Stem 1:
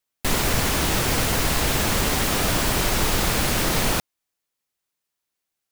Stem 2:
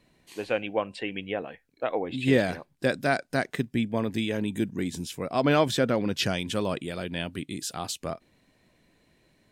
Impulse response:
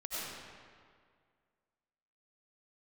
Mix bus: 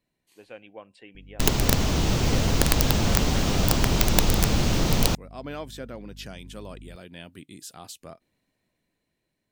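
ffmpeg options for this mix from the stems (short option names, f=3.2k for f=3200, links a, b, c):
-filter_complex "[0:a]firequalizer=gain_entry='entry(160,0);entry(360,-5);entry(1700,-13);entry(2900,-8);entry(6300,-9);entry(10000,-25)':delay=0.05:min_phase=1,aeval=exprs='val(0)+0.00398*(sin(2*PI*50*n/s)+sin(2*PI*2*50*n/s)/2+sin(2*PI*3*50*n/s)/3+sin(2*PI*4*50*n/s)/4+sin(2*PI*5*50*n/s)/5)':c=same,aeval=exprs='(mod(5.31*val(0)+1,2)-1)/5.31':c=same,adelay=1150,volume=1.5dB[a];[1:a]volume=-16dB[b];[a][b]amix=inputs=2:normalize=0,highshelf=f=11k:g=10,dynaudnorm=f=380:g=9:m=7dB"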